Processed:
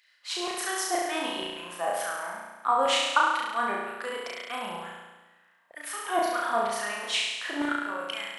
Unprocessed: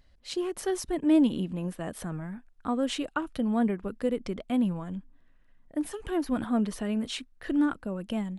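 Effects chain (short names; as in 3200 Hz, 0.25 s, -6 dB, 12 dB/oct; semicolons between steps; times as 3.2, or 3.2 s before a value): LFO high-pass saw down 2.1 Hz 650–2200 Hz; flutter echo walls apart 5.9 m, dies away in 1.2 s; gain +3 dB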